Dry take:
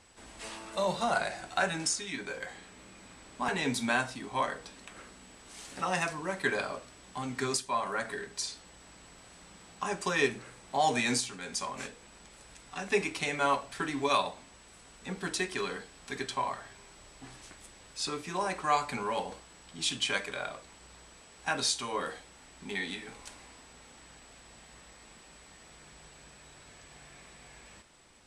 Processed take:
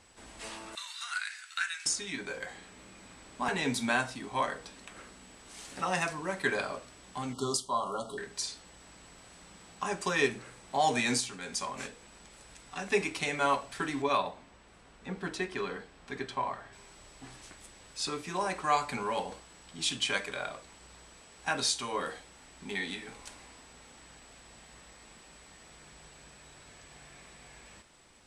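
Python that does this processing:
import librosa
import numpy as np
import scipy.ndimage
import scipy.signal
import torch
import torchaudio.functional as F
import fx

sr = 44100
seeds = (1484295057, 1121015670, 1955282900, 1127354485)

y = fx.steep_highpass(x, sr, hz=1400.0, slope=36, at=(0.75, 1.86))
y = fx.brickwall_bandstop(y, sr, low_hz=1400.0, high_hz=2800.0, at=(7.33, 8.18))
y = fx.lowpass(y, sr, hz=2200.0, slope=6, at=(14.02, 16.73))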